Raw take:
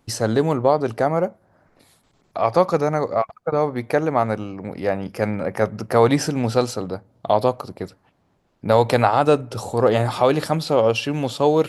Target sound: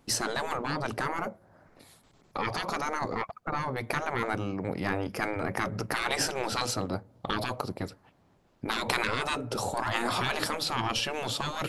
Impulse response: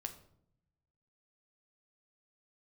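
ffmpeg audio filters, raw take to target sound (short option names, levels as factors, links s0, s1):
-af "aeval=exprs='0.841*(cos(1*acos(clip(val(0)/0.841,-1,1)))-cos(1*PI/2))+0.075*(cos(4*acos(clip(val(0)/0.841,-1,1)))-cos(4*PI/2))':c=same,afftfilt=real='re*lt(hypot(re,im),0.251)':imag='im*lt(hypot(re,im),0.251)':win_size=1024:overlap=0.75"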